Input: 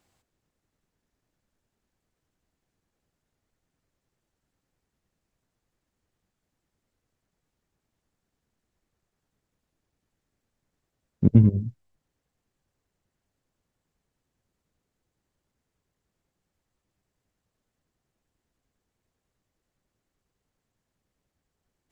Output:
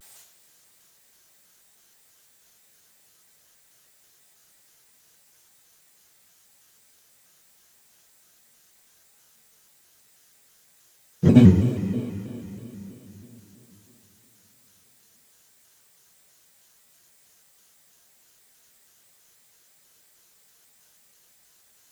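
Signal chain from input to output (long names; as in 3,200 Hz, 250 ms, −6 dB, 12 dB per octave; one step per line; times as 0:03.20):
spectral tilt +4.5 dB per octave
coupled-rooms reverb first 0.27 s, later 3.9 s, from −18 dB, DRR −9 dB
pitch modulation by a square or saw wave square 3.1 Hz, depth 160 cents
level +5.5 dB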